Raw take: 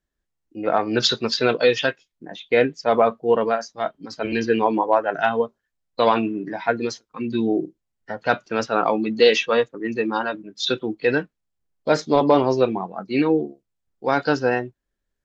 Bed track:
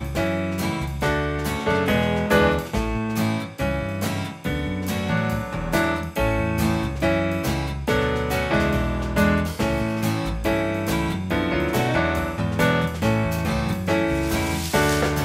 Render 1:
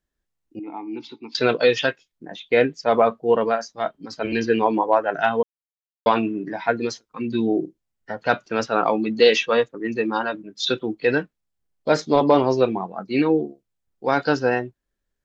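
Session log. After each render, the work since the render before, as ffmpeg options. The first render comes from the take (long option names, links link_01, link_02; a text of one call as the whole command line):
ffmpeg -i in.wav -filter_complex "[0:a]asettb=1/sr,asplit=3[link_01][link_02][link_03];[link_01]atrim=end=0.594[link_04];[link_02]atrim=start=0.59:end=1.35,asetpts=PTS-STARTPTS,afade=type=in:duration=0.004:curve=qsin,afade=type=out:start_time=0.756:duration=0.004:curve=qsin,asplit=3[link_05][link_06][link_07];[link_05]bandpass=frequency=300:width_type=q:width=8,volume=0dB[link_08];[link_06]bandpass=frequency=870:width_type=q:width=8,volume=-6dB[link_09];[link_07]bandpass=frequency=2240:width_type=q:width=8,volume=-9dB[link_10];[link_08][link_09][link_10]amix=inputs=3:normalize=0[link_11];[link_03]atrim=start=1.346[link_12];[link_04][link_11]acrossfade=duration=0.004:curve1=hsin:curve2=qsin[link_13];[link_13][link_12]acrossfade=duration=0.004:curve1=qsin:curve2=hsin,asplit=3[link_14][link_15][link_16];[link_14]atrim=end=5.43,asetpts=PTS-STARTPTS,afade=type=out:start_time=5.426:duration=0.004:curve=hsin[link_17];[link_15]atrim=start=5.43:end=6.06,asetpts=PTS-STARTPTS,volume=0[link_18];[link_16]atrim=start=6.06,asetpts=PTS-STARTPTS,afade=type=in:duration=0.004:curve=hsin[link_19];[link_17][link_18][link_19]concat=n=3:v=0:a=1" out.wav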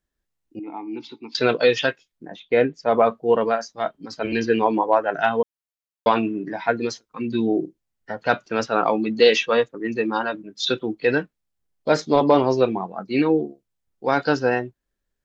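ffmpeg -i in.wav -filter_complex "[0:a]asettb=1/sr,asplit=3[link_01][link_02][link_03];[link_01]atrim=end=2.294[link_04];[link_02]atrim=start=2.29:end=3,asetpts=PTS-STARTPTS,afade=type=in:duration=0.004:curve=qsin,afade=type=out:start_time=0.706:duration=0.004:curve=qsin,highshelf=frequency=2300:gain=-8[link_05];[link_03]atrim=start=2.996[link_06];[link_04][link_05]acrossfade=duration=0.004:curve1=hsin:curve2=qsin[link_07];[link_07][link_06]acrossfade=duration=0.004:curve1=qsin:curve2=hsin" out.wav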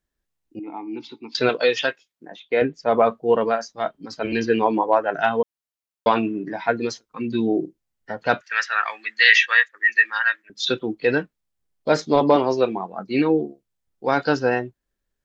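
ffmpeg -i in.wav -filter_complex "[0:a]asettb=1/sr,asplit=3[link_01][link_02][link_03];[link_01]atrim=end=1.494[link_04];[link_02]atrim=start=1.49:end=2.62,asetpts=PTS-STARTPTS,afade=type=in:duration=0.004:curve=qsin,afade=type=out:start_time=1.126:duration=0.004:curve=qsin,highpass=frequency=400:poles=1[link_05];[link_03]atrim=start=2.616[link_06];[link_04][link_05]acrossfade=duration=0.004:curve1=hsin:curve2=qsin[link_07];[link_07][link_06]acrossfade=duration=0.004:curve1=qsin:curve2=hsin,asettb=1/sr,asplit=3[link_08][link_09][link_10];[link_08]atrim=end=8.414[link_11];[link_09]atrim=start=8.41:end=10.5,asetpts=PTS-STARTPTS,afade=type=in:duration=0.004:curve=qsin,afade=type=out:start_time=2.086:duration=0.004:curve=qsin,highpass=frequency=1800:width_type=q:width=10[link_12];[link_10]atrim=start=10.496[link_13];[link_11][link_12]acrossfade=duration=0.004:curve1=hsin:curve2=qsin[link_14];[link_14][link_13]acrossfade=duration=0.004:curve1=qsin:curve2=hsin,asettb=1/sr,asplit=3[link_15][link_16][link_17];[link_15]atrim=end=12.364[link_18];[link_16]atrim=start=12.36:end=12.93,asetpts=PTS-STARTPTS,afade=type=in:duration=0.004:curve=qsin,afade=type=out:start_time=0.566:duration=0.004:curve=qsin,highpass=frequency=240:poles=1[link_19];[link_17]atrim=start=12.926[link_20];[link_18][link_19]acrossfade=duration=0.004:curve1=hsin:curve2=qsin[link_21];[link_21][link_20]acrossfade=duration=0.004:curve1=qsin:curve2=hsin" out.wav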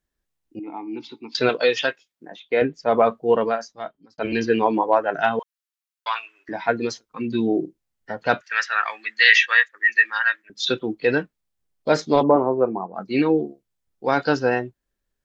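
ffmpeg -i in.wav -filter_complex "[0:a]asettb=1/sr,asplit=3[link_01][link_02][link_03];[link_01]atrim=end=5.394[link_04];[link_02]atrim=start=5.39:end=6.49,asetpts=PTS-STARTPTS,afade=type=in:duration=0.004:curve=qsin,afade=type=out:start_time=1.096:duration=0.004:curve=qsin,highpass=frequency=1100:width=0.5412,highpass=frequency=1100:width=1.3066[link_05];[link_03]atrim=start=6.486[link_06];[link_04][link_05]acrossfade=duration=0.004:curve1=hsin:curve2=qsin[link_07];[link_07][link_06]acrossfade=duration=0.004:curve1=qsin:curve2=hsin,asplit=3[link_08][link_09][link_10];[link_08]afade=type=out:start_time=12.22:duration=0.02[link_11];[link_09]lowpass=frequency=1300:width=0.5412,lowpass=frequency=1300:width=1.3066,afade=type=in:start_time=12.22:duration=0.02,afade=type=out:start_time=12.94:duration=0.02[link_12];[link_10]afade=type=in:start_time=12.94:duration=0.02[link_13];[link_11][link_12][link_13]amix=inputs=3:normalize=0,asplit=2[link_14][link_15];[link_14]atrim=end=4.18,asetpts=PTS-STARTPTS,afade=type=out:start_time=3.4:duration=0.78[link_16];[link_15]atrim=start=4.18,asetpts=PTS-STARTPTS,afade=type=in:duration=0.004:curve=hsin[link_17];[link_16][link_17]concat=n=2:v=0:a=1" out.wav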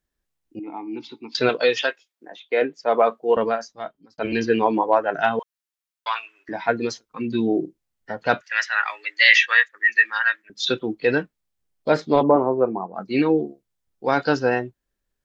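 ffmpeg -i in.wav -filter_complex "[0:a]asettb=1/sr,asplit=3[link_01][link_02][link_03];[link_01]atrim=end=1.784[link_04];[link_02]atrim=start=1.78:end=3.37,asetpts=PTS-STARTPTS,afade=type=in:duration=0.004:curve=qsin,afade=type=out:start_time=1.586:duration=0.004:curve=qsin,highpass=320[link_05];[link_03]atrim=start=3.366[link_06];[link_04][link_05]acrossfade=duration=0.004:curve1=hsin:curve2=qsin[link_07];[link_07][link_06]acrossfade=duration=0.004:curve1=qsin:curve2=hsin,asettb=1/sr,asplit=3[link_08][link_09][link_10];[link_08]atrim=end=8.474[link_11];[link_09]atrim=start=8.47:end=9.35,asetpts=PTS-STARTPTS,afade=type=in:duration=0.004:curve=qsin,afade=type=out:start_time=0.876:duration=0.004:curve=qsin,afreqshift=89[link_12];[link_10]atrim=start=9.346[link_13];[link_11][link_12]acrossfade=duration=0.004:curve1=hsin:curve2=qsin[link_14];[link_14][link_13]acrossfade=duration=0.004:curve1=qsin:curve2=hsin,asettb=1/sr,asplit=3[link_15][link_16][link_17];[link_15]atrim=end=11.904[link_18];[link_16]atrim=start=11.9:end=12.34,asetpts=PTS-STARTPTS,afade=type=in:duration=0.004:curve=qsin,afade=type=out:start_time=0.436:duration=0.004:curve=qsin,equalizer=frequency=6300:width=1.5:gain=-11.5[link_19];[link_17]atrim=start=12.336[link_20];[link_18][link_19]acrossfade=duration=0.004:curve1=hsin:curve2=qsin[link_21];[link_21][link_20]acrossfade=duration=0.004:curve1=qsin:curve2=hsin" out.wav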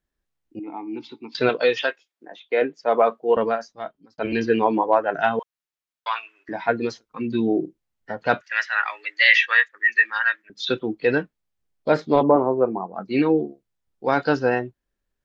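ffmpeg -i in.wav -filter_complex "[0:a]highshelf=frequency=5100:gain=-7,acrossover=split=5300[link_01][link_02];[link_02]acompressor=threshold=-47dB:ratio=4:attack=1:release=60[link_03];[link_01][link_03]amix=inputs=2:normalize=0" out.wav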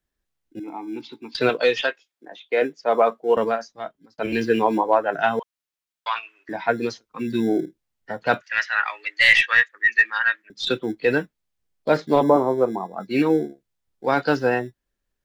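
ffmpeg -i in.wav -filter_complex "[0:a]acrossover=split=180|2200[link_01][link_02][link_03];[link_01]acrusher=samples=24:mix=1:aa=0.000001[link_04];[link_03]aeval=exprs='0.398*(cos(1*acos(clip(val(0)/0.398,-1,1)))-cos(1*PI/2))+0.0224*(cos(5*acos(clip(val(0)/0.398,-1,1)))-cos(5*PI/2))+0.0158*(cos(6*acos(clip(val(0)/0.398,-1,1)))-cos(6*PI/2))':channel_layout=same[link_05];[link_04][link_02][link_05]amix=inputs=3:normalize=0" out.wav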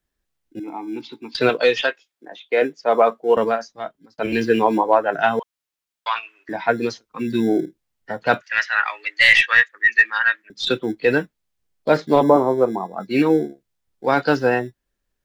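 ffmpeg -i in.wav -af "volume=2.5dB,alimiter=limit=-2dB:level=0:latency=1" out.wav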